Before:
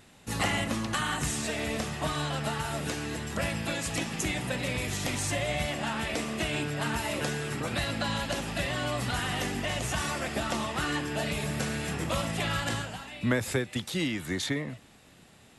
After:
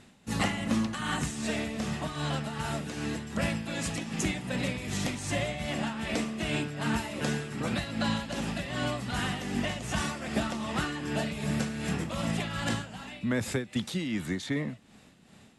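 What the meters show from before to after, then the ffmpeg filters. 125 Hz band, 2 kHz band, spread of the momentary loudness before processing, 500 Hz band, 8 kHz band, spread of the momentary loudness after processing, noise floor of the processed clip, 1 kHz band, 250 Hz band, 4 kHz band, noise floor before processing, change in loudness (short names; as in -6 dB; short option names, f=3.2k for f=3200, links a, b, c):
-0.5 dB, -2.5 dB, 3 LU, -2.0 dB, -4.0 dB, 3 LU, -56 dBFS, -2.5 dB, +2.5 dB, -3.0 dB, -56 dBFS, -1.0 dB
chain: -af "lowpass=9.9k,equalizer=f=210:w=1.9:g=7.5,tremolo=f=2.6:d=0.59"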